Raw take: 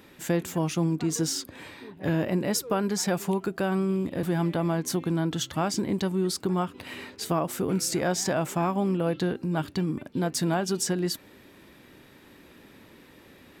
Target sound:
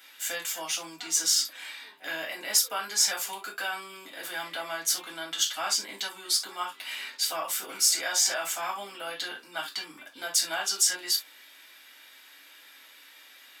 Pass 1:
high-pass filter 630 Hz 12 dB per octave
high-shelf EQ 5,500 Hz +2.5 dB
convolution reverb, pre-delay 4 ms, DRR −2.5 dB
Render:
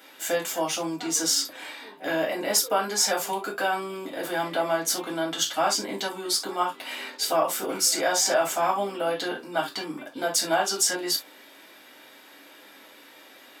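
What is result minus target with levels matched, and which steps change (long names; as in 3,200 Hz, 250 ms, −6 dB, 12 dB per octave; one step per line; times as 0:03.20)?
500 Hz band +11.5 dB
change: high-pass filter 1,600 Hz 12 dB per octave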